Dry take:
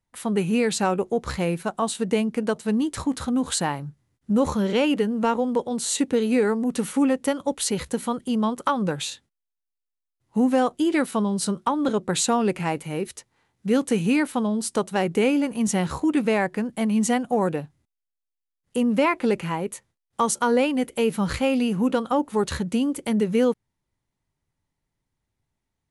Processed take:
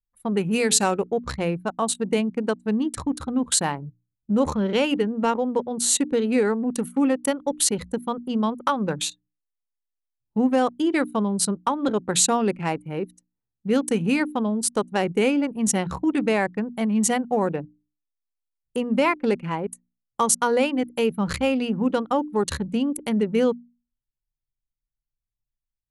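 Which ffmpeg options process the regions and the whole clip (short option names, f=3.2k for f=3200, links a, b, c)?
-filter_complex "[0:a]asettb=1/sr,asplit=3[a][b][c];[a]atrim=end=0.514[d];[b]atrim=start=0.51:end=1.1,asetpts=PTS-STARTPTS,afade=t=in:d=0.004:c=qsin,afade=t=out:st=0.586:d=0.004:c=qsin,highshelf=f=3.3k:g=6,bandreject=f=431.6:t=h:w=4,bandreject=f=863.2:t=h:w=4,bandreject=f=1.2948k:t=h:w=4,bandreject=f=1.7264k:t=h:w=4,bandreject=f=2.158k:t=h:w=4,bandreject=f=2.5896k:t=h:w=4,bandreject=f=3.0212k:t=h:w=4,bandreject=f=3.4528k:t=h:w=4,bandreject=f=3.8844k:t=h:w=4,bandreject=f=4.316k:t=h:w=4,bandreject=f=4.7476k:t=h:w=4,bandreject=f=5.1792k:t=h:w=4,bandreject=f=5.6108k:t=h:w=4,bandreject=f=6.0424k:t=h:w=4,bandreject=f=6.474k:t=h:w=4,bandreject=f=6.9056k:t=h:w=4,bandreject=f=7.3372k:t=h:w=4,bandreject=f=7.7688k:t=h:w=4,bandreject=f=8.2004k:t=h:w=4,bandreject=f=8.632k:t=h:w=4,bandreject=f=9.0636k:t=h:w=4,bandreject=f=9.4952k:t=h:w=4,bandreject=f=9.9268k:t=h:w=4,bandreject=f=10.3584k:t=h:w=4,bandreject=f=10.79k:t=h:w=4,bandreject=f=11.2216k:t=h:w=4,bandreject=f=11.6532k:t=h:w=4,bandreject=f=12.0848k:t=h:w=4,bandreject=f=12.5164k:t=h:w=4,bandreject=f=12.948k:t=h:w=4,bandreject=f=13.3796k:t=h:w=4,bandreject=f=13.8112k:t=h:w=4,bandreject=f=14.2428k:t=h:w=4,bandreject=f=14.6744k:t=h:w=4,bandreject=f=15.106k:t=h:w=4,bandreject=f=15.5376k:t=h:w=4,bandreject=f=15.9692k:t=h:w=4,bandreject=f=16.4008k:t=h:w=4,bandreject=f=16.8324k:t=h:w=4,bandreject=f=17.264k:t=h:w=4[e];[c]atrim=start=1.096[f];[d][e]acrossfade=d=0.004:c1=hsin:c2=qsin[g];[g][f]acrossfade=d=0.004:c1=qsin:c2=hsin,anlmdn=39.8,highshelf=f=5.3k:g=8,bandreject=f=60:t=h:w=6,bandreject=f=120:t=h:w=6,bandreject=f=180:t=h:w=6,bandreject=f=240:t=h:w=6,bandreject=f=300:t=h:w=6"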